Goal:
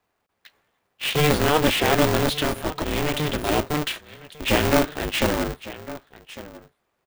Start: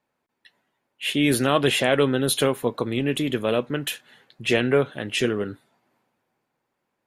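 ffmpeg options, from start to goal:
-filter_complex "[0:a]asettb=1/sr,asplit=3[s0][s1][s2];[s0]atrim=end=2.294[s3];[s1]atrim=start=2.29:end=3.49,asetpts=PTS-STARTPTS,afade=t=in:d=0.004:c=qsin,afade=t=out:st=1.196:d=0.004:c=qsin,equalizer=f=460:t=o:w=2.5:g=-6[s4];[s2]atrim=start=3.486[s5];[s3][s4]acrossfade=d=0.004:c1=hsin:c2=qsin[s6];[s6][s5]acrossfade=d=0.004:c1=qsin:c2=hsin,aecho=1:1:1151:0.106,acrossover=split=190[s7][s8];[s7]aeval=exprs='sgn(val(0))*max(abs(val(0))-0.00376,0)':c=same[s9];[s9][s8]amix=inputs=2:normalize=0,acrossover=split=4500[s10][s11];[s11]acompressor=threshold=0.00708:ratio=4:attack=1:release=60[s12];[s10][s12]amix=inputs=2:normalize=0,asplit=2[s13][s14];[s14]aeval=exprs='(mod(11.9*val(0)+1,2)-1)/11.9':c=same,volume=0.531[s15];[s13][s15]amix=inputs=2:normalize=0,lowshelf=f=110:g=9,aeval=exprs='val(0)*sgn(sin(2*PI*150*n/s))':c=same"

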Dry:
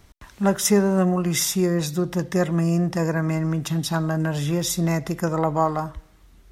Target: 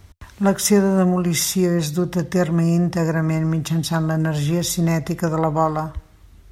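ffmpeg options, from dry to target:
-af "equalizer=f=85:w=1.8:g=10.5,volume=1.26"

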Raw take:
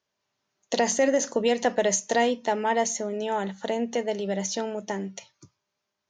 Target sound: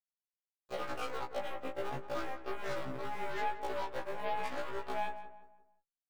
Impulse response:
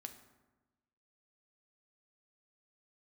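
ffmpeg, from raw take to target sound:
-filter_complex "[0:a]afftfilt=real='real(if(between(b,1,1008),(2*floor((b-1)/48)+1)*48-b,b),0)':imag='imag(if(between(b,1,1008),(2*floor((b-1)/48)+1)*48-b,b),0)*if(between(b,1,1008),-1,1)':win_size=2048:overlap=0.75,highpass=420,acrusher=samples=14:mix=1:aa=0.000001:lfo=1:lforange=22.4:lforate=1.1,aecho=1:1:7.3:0.81,acompressor=threshold=0.02:ratio=8,afwtdn=0.01,aeval=exprs='0.0562*(cos(1*acos(clip(val(0)/0.0562,-1,1)))-cos(1*PI/2))+0.00316*(cos(5*acos(clip(val(0)/0.0562,-1,1)))-cos(5*PI/2))+0.01*(cos(7*acos(clip(val(0)/0.0562,-1,1)))-cos(7*PI/2))+0.00501*(cos(8*acos(clip(val(0)/0.0562,-1,1)))-cos(8*PI/2))':c=same,flanger=delay=17.5:depth=4.9:speed=0.83,asplit=2[s0][s1];[s1]adelay=174,lowpass=f=1700:p=1,volume=0.299,asplit=2[s2][s3];[s3]adelay=174,lowpass=f=1700:p=1,volume=0.4,asplit=2[s4][s5];[s5]adelay=174,lowpass=f=1700:p=1,volume=0.4,asplit=2[s6][s7];[s7]adelay=174,lowpass=f=1700:p=1,volume=0.4[s8];[s0][s2][s4][s6][s8]amix=inputs=5:normalize=0,afftfilt=real='re*1.73*eq(mod(b,3),0)':imag='im*1.73*eq(mod(b,3),0)':win_size=2048:overlap=0.75,volume=1.58"

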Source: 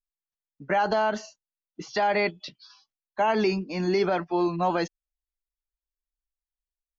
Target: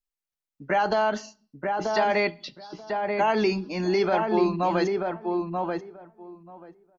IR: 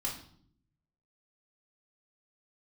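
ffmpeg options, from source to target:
-filter_complex "[0:a]asplit=2[s0][s1];[s1]adelay=935,lowpass=f=1400:p=1,volume=0.708,asplit=2[s2][s3];[s3]adelay=935,lowpass=f=1400:p=1,volume=0.15,asplit=2[s4][s5];[s5]adelay=935,lowpass=f=1400:p=1,volume=0.15[s6];[s0][s2][s4][s6]amix=inputs=4:normalize=0,asplit=2[s7][s8];[1:a]atrim=start_sample=2205,afade=t=out:st=0.36:d=0.01,atrim=end_sample=16317[s9];[s8][s9]afir=irnorm=-1:irlink=0,volume=0.112[s10];[s7][s10]amix=inputs=2:normalize=0"

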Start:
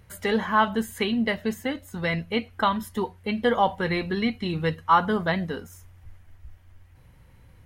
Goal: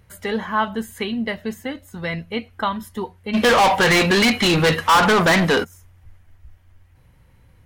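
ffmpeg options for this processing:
-filter_complex "[0:a]asplit=3[s0][s1][s2];[s0]afade=t=out:st=3.33:d=0.02[s3];[s1]asplit=2[s4][s5];[s5]highpass=f=720:p=1,volume=44.7,asoftclip=type=tanh:threshold=0.398[s6];[s4][s6]amix=inputs=2:normalize=0,lowpass=f=7100:p=1,volume=0.501,afade=t=in:st=3.33:d=0.02,afade=t=out:st=5.63:d=0.02[s7];[s2]afade=t=in:st=5.63:d=0.02[s8];[s3][s7][s8]amix=inputs=3:normalize=0"

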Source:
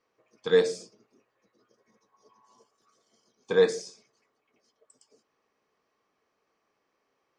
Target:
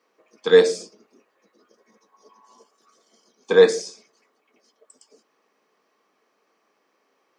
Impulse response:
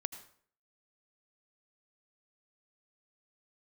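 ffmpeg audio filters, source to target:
-af "highpass=f=190:w=0.5412,highpass=f=190:w=1.3066,volume=2.51"

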